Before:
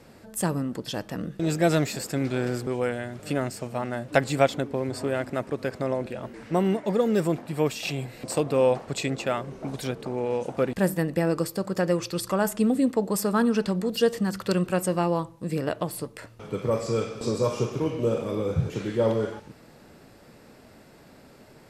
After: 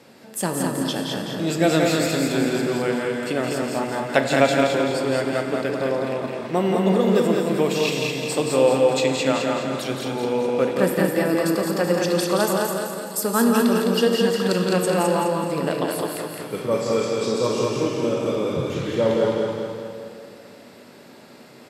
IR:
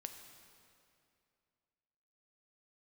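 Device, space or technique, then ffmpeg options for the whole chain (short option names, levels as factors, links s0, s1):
PA in a hall: -filter_complex "[0:a]asettb=1/sr,asplit=3[s0][s1][s2];[s0]atrim=end=12.514[s3];[s1]atrim=start=12.51:end=13.23,asetpts=PTS-STARTPTS,afade=t=in:d=0.004:c=qsin,afade=t=out:st=0.716:d=0.004:c=qsin,aderivative[s4];[s2]atrim=start=13.226[s5];[s3][s4]acrossfade=d=0.004:c1=hsin:c2=qsin[s6];[s6][s5]acrossfade=d=0.004:c1=qsin:c2=hsin,highpass=170,equalizer=f=3500:t=o:w=1:g=4,aecho=1:1:172:0.501[s7];[1:a]atrim=start_sample=2205[s8];[s7][s8]afir=irnorm=-1:irlink=0,aecho=1:1:209|418|627|836|1045|1254:0.631|0.278|0.122|0.0537|0.0236|0.0104,volume=2.24"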